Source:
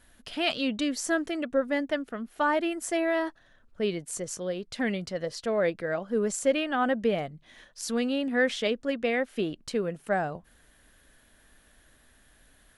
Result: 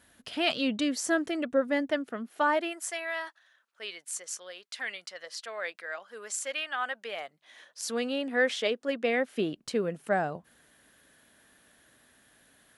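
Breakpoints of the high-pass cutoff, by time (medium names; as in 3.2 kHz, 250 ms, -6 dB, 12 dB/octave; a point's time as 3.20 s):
1.83 s 94 Hz
2.51 s 310 Hz
2.98 s 1.2 kHz
7.01 s 1.2 kHz
7.87 s 330 Hz
8.85 s 330 Hz
9.34 s 130 Hz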